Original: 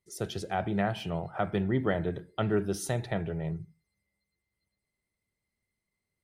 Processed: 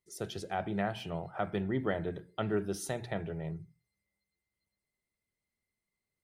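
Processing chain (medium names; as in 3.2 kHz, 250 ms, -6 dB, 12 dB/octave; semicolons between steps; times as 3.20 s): peaking EQ 86 Hz -2.5 dB 2 oct; hum notches 60/120/180 Hz; trim -3.5 dB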